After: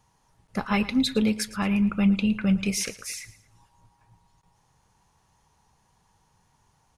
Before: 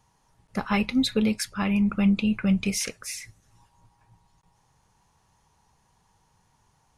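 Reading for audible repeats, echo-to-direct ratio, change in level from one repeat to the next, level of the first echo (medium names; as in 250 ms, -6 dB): 2, -16.5 dB, -7.5 dB, -17.0 dB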